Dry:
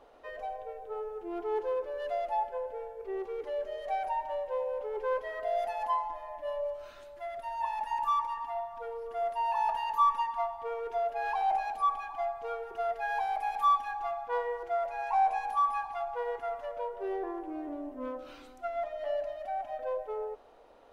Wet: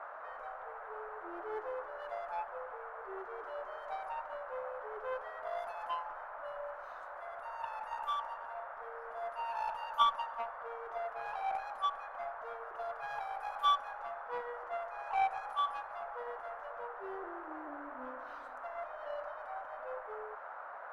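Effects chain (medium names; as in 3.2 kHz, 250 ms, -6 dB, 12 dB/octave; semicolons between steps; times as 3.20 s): Chebyshev shaper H 3 -12 dB, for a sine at -15 dBFS; band noise 560–1500 Hz -48 dBFS; trim +1 dB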